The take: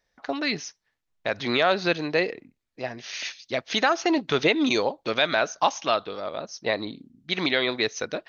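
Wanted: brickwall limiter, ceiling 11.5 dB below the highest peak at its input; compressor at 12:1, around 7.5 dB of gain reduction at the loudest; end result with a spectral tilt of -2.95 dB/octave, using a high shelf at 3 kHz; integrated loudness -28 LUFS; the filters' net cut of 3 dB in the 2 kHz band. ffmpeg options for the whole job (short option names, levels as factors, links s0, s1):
-af "equalizer=f=2000:t=o:g=-5.5,highshelf=f=3000:g=4,acompressor=threshold=0.0631:ratio=12,volume=2,alimiter=limit=0.15:level=0:latency=1"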